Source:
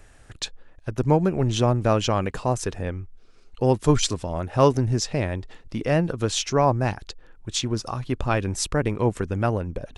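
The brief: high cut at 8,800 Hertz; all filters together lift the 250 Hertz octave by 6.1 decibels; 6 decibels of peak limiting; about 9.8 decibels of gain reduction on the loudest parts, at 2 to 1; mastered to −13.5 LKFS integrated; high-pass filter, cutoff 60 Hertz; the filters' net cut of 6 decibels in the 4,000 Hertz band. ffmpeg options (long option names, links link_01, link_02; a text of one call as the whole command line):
ffmpeg -i in.wav -af "highpass=60,lowpass=8800,equalizer=frequency=250:width_type=o:gain=8,equalizer=frequency=4000:width_type=o:gain=-8,acompressor=threshold=-27dB:ratio=2,volume=17dB,alimiter=limit=-1.5dB:level=0:latency=1" out.wav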